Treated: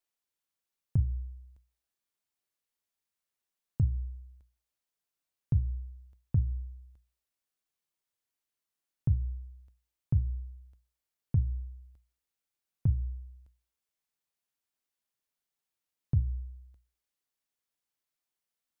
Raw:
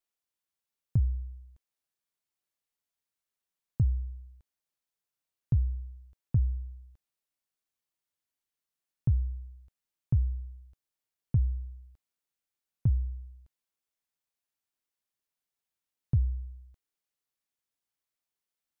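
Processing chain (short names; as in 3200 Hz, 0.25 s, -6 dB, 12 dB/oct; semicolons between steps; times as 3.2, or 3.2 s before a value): notches 60/120/180 Hz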